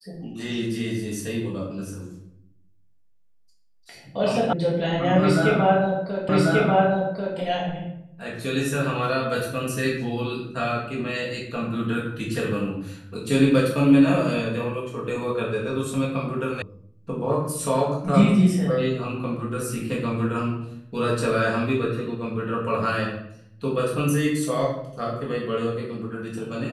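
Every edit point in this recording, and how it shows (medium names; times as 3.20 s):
4.53 s: sound stops dead
6.29 s: repeat of the last 1.09 s
16.62 s: sound stops dead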